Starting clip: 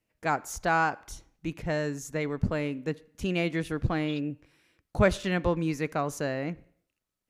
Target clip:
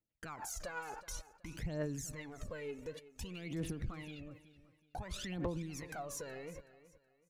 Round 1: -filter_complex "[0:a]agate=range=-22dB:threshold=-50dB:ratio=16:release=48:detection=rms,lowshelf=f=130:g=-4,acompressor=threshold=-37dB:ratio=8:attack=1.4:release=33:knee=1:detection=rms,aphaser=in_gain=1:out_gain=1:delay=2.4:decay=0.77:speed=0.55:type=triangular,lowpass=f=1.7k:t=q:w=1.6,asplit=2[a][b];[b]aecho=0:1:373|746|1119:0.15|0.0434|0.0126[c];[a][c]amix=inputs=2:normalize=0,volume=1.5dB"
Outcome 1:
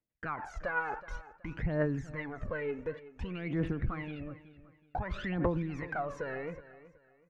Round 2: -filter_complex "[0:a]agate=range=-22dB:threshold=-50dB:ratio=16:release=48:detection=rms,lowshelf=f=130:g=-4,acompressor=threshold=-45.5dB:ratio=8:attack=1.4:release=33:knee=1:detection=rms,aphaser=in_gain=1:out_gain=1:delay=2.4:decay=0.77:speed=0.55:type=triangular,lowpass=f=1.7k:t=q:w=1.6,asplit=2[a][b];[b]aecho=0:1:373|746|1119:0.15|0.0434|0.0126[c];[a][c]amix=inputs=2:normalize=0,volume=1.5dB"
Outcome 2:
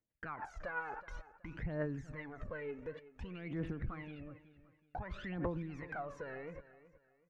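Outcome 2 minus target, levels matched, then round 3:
2000 Hz band +3.0 dB
-filter_complex "[0:a]agate=range=-22dB:threshold=-50dB:ratio=16:release=48:detection=rms,lowshelf=f=130:g=-4,acompressor=threshold=-45.5dB:ratio=8:attack=1.4:release=33:knee=1:detection=rms,aphaser=in_gain=1:out_gain=1:delay=2.4:decay=0.77:speed=0.55:type=triangular,asplit=2[a][b];[b]aecho=0:1:373|746|1119:0.15|0.0434|0.0126[c];[a][c]amix=inputs=2:normalize=0,volume=1.5dB"

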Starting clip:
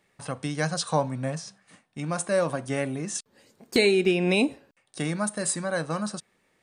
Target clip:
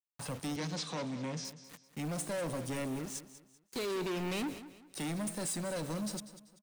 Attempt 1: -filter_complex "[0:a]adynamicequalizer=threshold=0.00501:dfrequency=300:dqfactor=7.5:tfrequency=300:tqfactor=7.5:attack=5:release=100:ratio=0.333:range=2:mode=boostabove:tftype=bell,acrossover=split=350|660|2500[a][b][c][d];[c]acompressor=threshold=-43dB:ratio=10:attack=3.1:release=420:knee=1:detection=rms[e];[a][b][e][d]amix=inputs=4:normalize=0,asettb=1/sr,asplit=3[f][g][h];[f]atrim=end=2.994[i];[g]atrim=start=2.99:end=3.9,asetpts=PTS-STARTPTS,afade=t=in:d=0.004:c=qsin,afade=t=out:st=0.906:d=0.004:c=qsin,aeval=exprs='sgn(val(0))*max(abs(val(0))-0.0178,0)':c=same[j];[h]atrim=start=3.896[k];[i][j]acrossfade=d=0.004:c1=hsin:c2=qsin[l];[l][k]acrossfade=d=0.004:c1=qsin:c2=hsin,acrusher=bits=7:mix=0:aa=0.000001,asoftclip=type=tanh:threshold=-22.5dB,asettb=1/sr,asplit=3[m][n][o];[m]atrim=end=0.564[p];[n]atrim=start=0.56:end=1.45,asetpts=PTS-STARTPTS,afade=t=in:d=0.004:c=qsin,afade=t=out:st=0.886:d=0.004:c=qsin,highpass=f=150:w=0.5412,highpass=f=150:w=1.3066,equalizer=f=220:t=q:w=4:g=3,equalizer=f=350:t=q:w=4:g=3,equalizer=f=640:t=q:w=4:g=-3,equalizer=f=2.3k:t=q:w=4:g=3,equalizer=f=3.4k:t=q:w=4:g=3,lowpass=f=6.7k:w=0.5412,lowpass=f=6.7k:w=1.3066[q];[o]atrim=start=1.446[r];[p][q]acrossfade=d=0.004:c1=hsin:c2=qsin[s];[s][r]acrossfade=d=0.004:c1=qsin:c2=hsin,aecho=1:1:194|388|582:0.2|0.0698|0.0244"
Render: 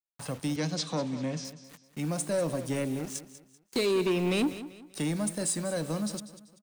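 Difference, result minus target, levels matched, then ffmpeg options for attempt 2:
soft clip: distortion -8 dB
-filter_complex "[0:a]adynamicequalizer=threshold=0.00501:dfrequency=300:dqfactor=7.5:tfrequency=300:tqfactor=7.5:attack=5:release=100:ratio=0.333:range=2:mode=boostabove:tftype=bell,acrossover=split=350|660|2500[a][b][c][d];[c]acompressor=threshold=-43dB:ratio=10:attack=3.1:release=420:knee=1:detection=rms[e];[a][b][e][d]amix=inputs=4:normalize=0,asettb=1/sr,asplit=3[f][g][h];[f]atrim=end=2.994[i];[g]atrim=start=2.99:end=3.9,asetpts=PTS-STARTPTS,afade=t=in:d=0.004:c=qsin,afade=t=out:st=0.906:d=0.004:c=qsin,aeval=exprs='sgn(val(0))*max(abs(val(0))-0.0178,0)':c=same[j];[h]atrim=start=3.896[k];[i][j]acrossfade=d=0.004:c1=hsin:c2=qsin[l];[l][k]acrossfade=d=0.004:c1=qsin:c2=hsin,acrusher=bits=7:mix=0:aa=0.000001,asoftclip=type=tanh:threshold=-34dB,asettb=1/sr,asplit=3[m][n][o];[m]atrim=end=0.564[p];[n]atrim=start=0.56:end=1.45,asetpts=PTS-STARTPTS,afade=t=in:d=0.004:c=qsin,afade=t=out:st=0.886:d=0.004:c=qsin,highpass=f=150:w=0.5412,highpass=f=150:w=1.3066,equalizer=f=220:t=q:w=4:g=3,equalizer=f=350:t=q:w=4:g=3,equalizer=f=640:t=q:w=4:g=-3,equalizer=f=2.3k:t=q:w=4:g=3,equalizer=f=3.4k:t=q:w=4:g=3,lowpass=f=6.7k:w=0.5412,lowpass=f=6.7k:w=1.3066[q];[o]atrim=start=1.446[r];[p][q]acrossfade=d=0.004:c1=hsin:c2=qsin[s];[s][r]acrossfade=d=0.004:c1=qsin:c2=hsin,aecho=1:1:194|388|582:0.2|0.0698|0.0244"

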